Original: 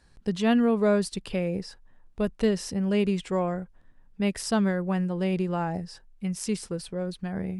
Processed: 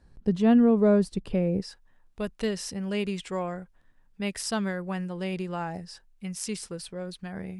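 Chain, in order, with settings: tilt shelf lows +6.5 dB, from 1.60 s lows -3.5 dB; trim -2.5 dB

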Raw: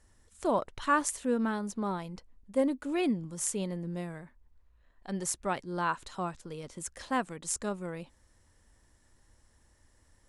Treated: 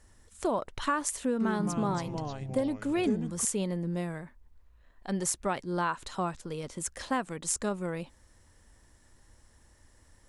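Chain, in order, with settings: compression 6:1, threshold -30 dBFS, peak gain reduction 9 dB; 1.24–3.45 s: ever faster or slower copies 161 ms, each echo -4 st, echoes 3, each echo -6 dB; trim +4.5 dB

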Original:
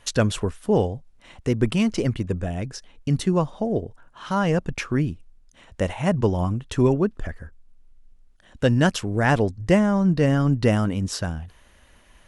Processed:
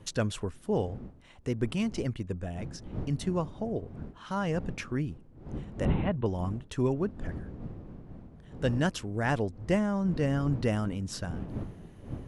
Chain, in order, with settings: wind noise 210 Hz -31 dBFS; 5.85–6.26 s: steep low-pass 4 kHz 96 dB/octave; trim -9 dB

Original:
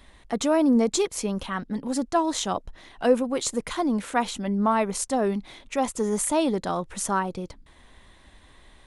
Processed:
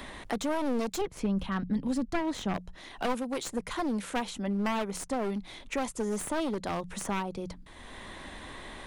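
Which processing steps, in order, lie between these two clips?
one-sided wavefolder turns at -23.5 dBFS; 1.01–2.54 s: tone controls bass +11 dB, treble -11 dB; hum notches 60/120/180 Hz; three bands compressed up and down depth 70%; trim -6.5 dB

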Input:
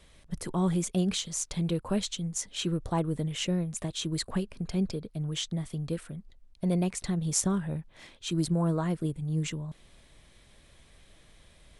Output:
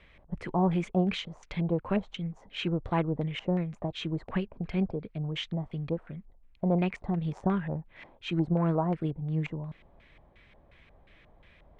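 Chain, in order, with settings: Chebyshev shaper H 3 -14 dB, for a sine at -9.5 dBFS; LFO low-pass square 2.8 Hz 820–2300 Hz; trim +7 dB

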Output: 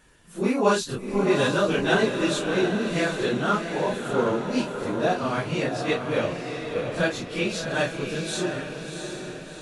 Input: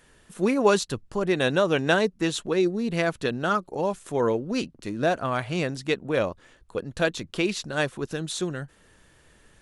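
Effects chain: phase randomisation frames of 100 ms; echo that smears into a reverb 709 ms, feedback 50%, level -6 dB

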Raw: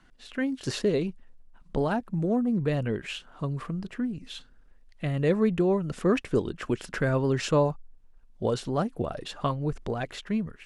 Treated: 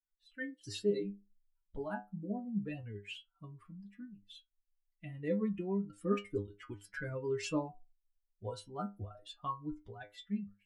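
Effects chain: expander on every frequency bin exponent 2; dynamic bell 660 Hz, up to -4 dB, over -46 dBFS, Q 2.5; inharmonic resonator 100 Hz, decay 0.27 s, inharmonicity 0.002; trim +3.5 dB

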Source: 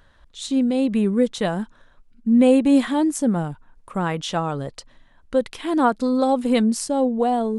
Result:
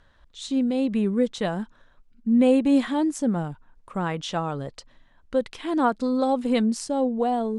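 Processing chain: low-pass 8 kHz 12 dB/octave; trim -3.5 dB

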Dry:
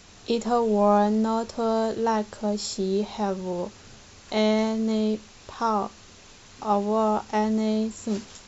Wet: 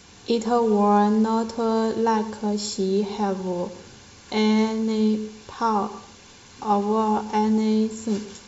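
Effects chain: comb of notches 640 Hz; reverberation RT60 0.55 s, pre-delay 87 ms, DRR 15 dB; trim +3 dB

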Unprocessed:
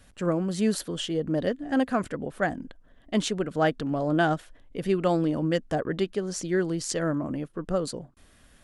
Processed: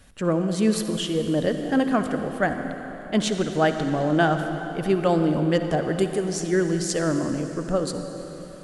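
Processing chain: 5.83–6.25 s: resonant high shelf 6.2 kHz +12 dB, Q 1.5; reverberation RT60 4.2 s, pre-delay 48 ms, DRR 6.5 dB; trim +3 dB

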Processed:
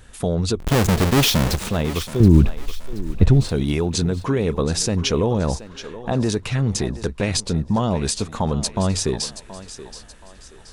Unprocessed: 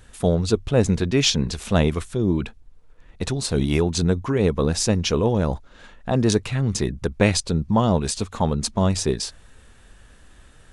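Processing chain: 0.59–1.69 s: square wave that keeps the level; peak limiter -13.5 dBFS, peak gain reduction 9.5 dB; 2.20–3.49 s: RIAA curve playback; thinning echo 726 ms, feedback 39%, high-pass 310 Hz, level -13 dB; trim +2.5 dB

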